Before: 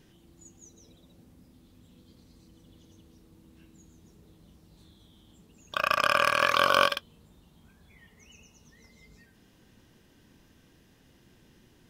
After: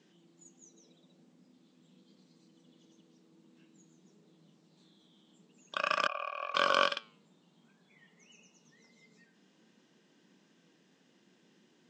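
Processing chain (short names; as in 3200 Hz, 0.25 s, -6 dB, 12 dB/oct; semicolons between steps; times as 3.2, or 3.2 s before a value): Chebyshev band-pass 170–7600 Hz, order 4; flange 0.48 Hz, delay 4.7 ms, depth 5.8 ms, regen +88%; 6.07–6.55 vowel filter a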